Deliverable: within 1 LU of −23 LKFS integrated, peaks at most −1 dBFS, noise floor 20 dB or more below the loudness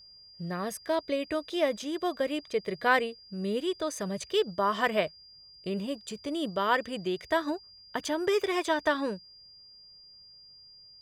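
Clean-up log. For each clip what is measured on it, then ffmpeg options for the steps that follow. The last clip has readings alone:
interfering tone 4,800 Hz; level of the tone −51 dBFS; integrated loudness −30.5 LKFS; sample peak −10.5 dBFS; target loudness −23.0 LKFS
→ -af "bandreject=frequency=4800:width=30"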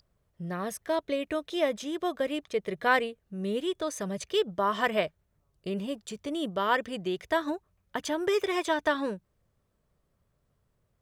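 interfering tone none found; integrated loudness −30.5 LKFS; sample peak −10.5 dBFS; target loudness −23.0 LKFS
→ -af "volume=7.5dB"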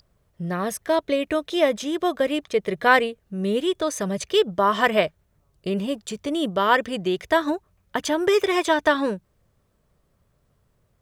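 integrated loudness −23.0 LKFS; sample peak −3.0 dBFS; background noise floor −67 dBFS

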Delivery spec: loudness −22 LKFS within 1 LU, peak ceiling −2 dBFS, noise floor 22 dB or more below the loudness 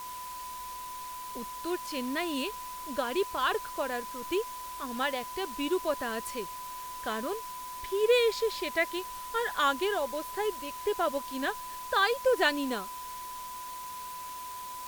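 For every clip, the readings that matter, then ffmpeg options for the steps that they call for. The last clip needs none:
interfering tone 1,000 Hz; level of the tone −39 dBFS; background noise floor −41 dBFS; target noise floor −54 dBFS; integrated loudness −32.0 LKFS; sample peak −12.0 dBFS; target loudness −22.0 LKFS
→ -af "bandreject=frequency=1000:width=30"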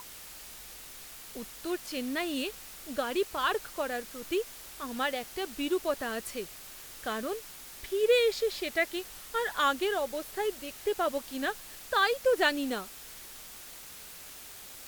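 interfering tone none found; background noise floor −47 dBFS; target noise floor −54 dBFS
→ -af "afftdn=noise_reduction=7:noise_floor=-47"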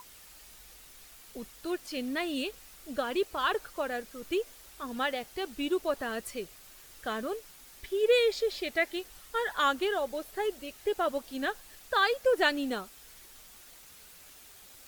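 background noise floor −53 dBFS; target noise floor −54 dBFS
→ -af "afftdn=noise_reduction=6:noise_floor=-53"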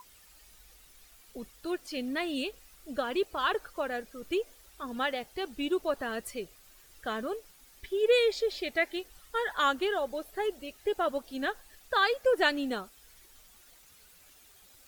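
background noise floor −58 dBFS; integrated loudness −31.5 LKFS; sample peak −12.5 dBFS; target loudness −22.0 LKFS
→ -af "volume=9.5dB"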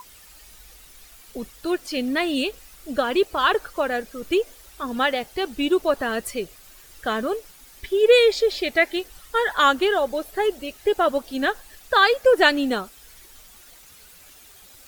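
integrated loudness −22.0 LKFS; sample peak −3.0 dBFS; background noise floor −49 dBFS

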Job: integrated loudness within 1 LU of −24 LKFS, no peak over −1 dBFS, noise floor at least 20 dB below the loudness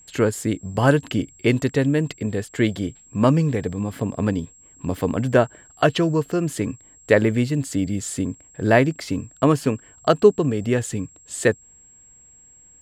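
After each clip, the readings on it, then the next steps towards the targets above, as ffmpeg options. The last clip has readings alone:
interfering tone 7,600 Hz; level of the tone −48 dBFS; integrated loudness −22.0 LKFS; sample peak −1.5 dBFS; target loudness −24.0 LKFS
→ -af "bandreject=frequency=7600:width=30"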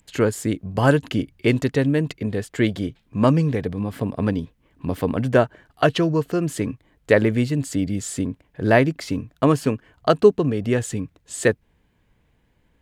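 interfering tone none found; integrated loudness −22.0 LKFS; sample peak −1.5 dBFS; target loudness −24.0 LKFS
→ -af "volume=-2dB"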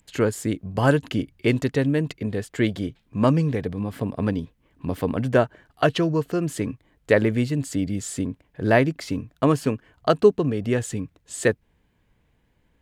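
integrated loudness −24.0 LKFS; sample peak −3.5 dBFS; background noise floor −66 dBFS

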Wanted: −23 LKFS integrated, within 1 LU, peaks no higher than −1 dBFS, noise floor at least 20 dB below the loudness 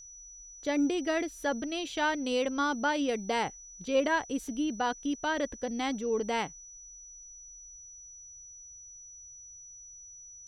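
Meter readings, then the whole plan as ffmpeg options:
interfering tone 5,900 Hz; level of the tone −47 dBFS; integrated loudness −31.0 LKFS; sample peak −16.5 dBFS; target loudness −23.0 LKFS
→ -af "bandreject=frequency=5900:width=30"
-af "volume=8dB"

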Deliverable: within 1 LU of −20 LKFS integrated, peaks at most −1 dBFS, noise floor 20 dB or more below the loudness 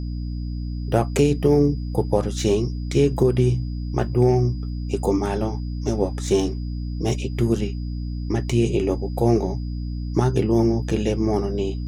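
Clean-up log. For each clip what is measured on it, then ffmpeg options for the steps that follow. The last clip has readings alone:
mains hum 60 Hz; hum harmonics up to 300 Hz; level of the hum −25 dBFS; interfering tone 4,900 Hz; level of the tone −51 dBFS; integrated loudness −22.5 LKFS; sample peak −4.5 dBFS; target loudness −20.0 LKFS
→ -af "bandreject=frequency=60:width_type=h:width=4,bandreject=frequency=120:width_type=h:width=4,bandreject=frequency=180:width_type=h:width=4,bandreject=frequency=240:width_type=h:width=4,bandreject=frequency=300:width_type=h:width=4"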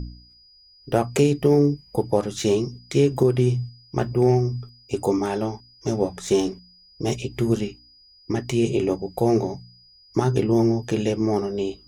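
mains hum none found; interfering tone 4,900 Hz; level of the tone −51 dBFS
→ -af "bandreject=frequency=4900:width=30"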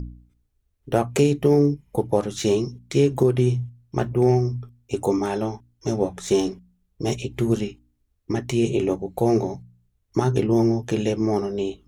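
interfering tone none found; integrated loudness −23.0 LKFS; sample peak −5.0 dBFS; target loudness −20.0 LKFS
→ -af "volume=3dB"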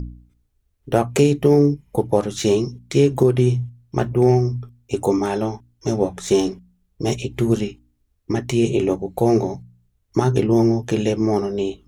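integrated loudness −20.0 LKFS; sample peak −2.0 dBFS; background noise floor −67 dBFS

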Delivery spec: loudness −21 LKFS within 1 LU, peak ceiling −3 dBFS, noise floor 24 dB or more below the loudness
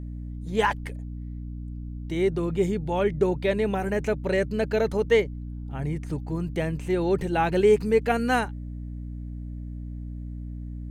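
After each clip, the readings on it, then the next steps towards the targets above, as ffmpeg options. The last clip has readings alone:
mains hum 60 Hz; hum harmonics up to 300 Hz; level of the hum −32 dBFS; integrated loudness −25.5 LKFS; sample peak −9.5 dBFS; target loudness −21.0 LKFS
→ -af "bandreject=frequency=60:width_type=h:width=6,bandreject=frequency=120:width_type=h:width=6,bandreject=frequency=180:width_type=h:width=6,bandreject=frequency=240:width_type=h:width=6,bandreject=frequency=300:width_type=h:width=6"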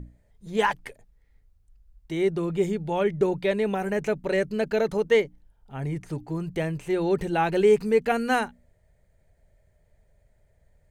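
mains hum none found; integrated loudness −25.5 LKFS; sample peak −10.0 dBFS; target loudness −21.0 LKFS
→ -af "volume=4.5dB"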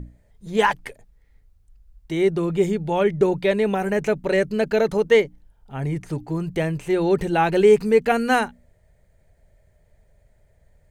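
integrated loudness −21.0 LKFS; sample peak −5.5 dBFS; background noise floor −59 dBFS

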